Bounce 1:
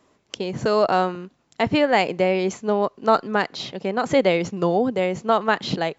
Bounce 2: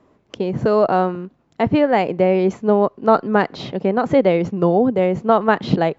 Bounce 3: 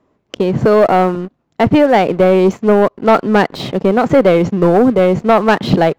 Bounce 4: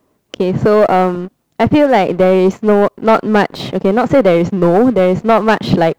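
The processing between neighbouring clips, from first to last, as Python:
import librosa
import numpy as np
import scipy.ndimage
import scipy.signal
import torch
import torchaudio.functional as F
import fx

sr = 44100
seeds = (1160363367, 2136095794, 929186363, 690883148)

y1 = fx.lowpass(x, sr, hz=1200.0, slope=6)
y1 = fx.low_shelf(y1, sr, hz=430.0, db=3.0)
y1 = fx.rider(y1, sr, range_db=3, speed_s=0.5)
y1 = F.gain(torch.from_numpy(y1), 4.5).numpy()
y2 = fx.leveller(y1, sr, passes=2)
y3 = fx.quant_dither(y2, sr, seeds[0], bits=12, dither='triangular')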